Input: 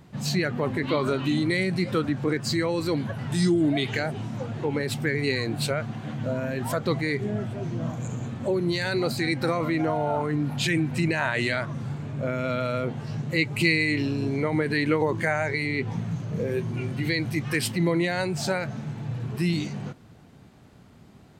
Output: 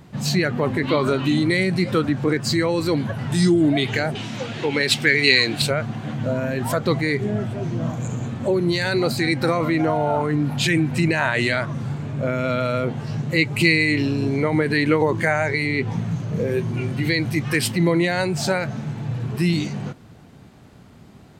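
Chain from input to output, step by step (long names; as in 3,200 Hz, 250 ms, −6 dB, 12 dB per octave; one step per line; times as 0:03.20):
0:04.15–0:05.62: meter weighting curve D
level +5 dB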